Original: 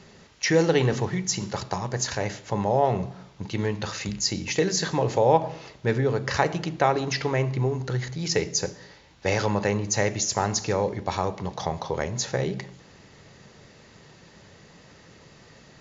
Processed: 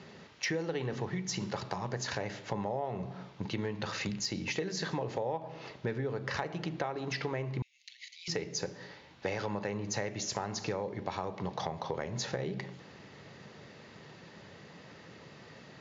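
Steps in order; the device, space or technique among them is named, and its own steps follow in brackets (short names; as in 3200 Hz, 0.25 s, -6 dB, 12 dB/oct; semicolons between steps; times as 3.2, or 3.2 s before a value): AM radio (BPF 110–4400 Hz; compressor 8:1, threshold -31 dBFS, peak gain reduction 18 dB; soft clip -17 dBFS, distortion -28 dB); 7.62–8.28 steep high-pass 2100 Hz 72 dB/oct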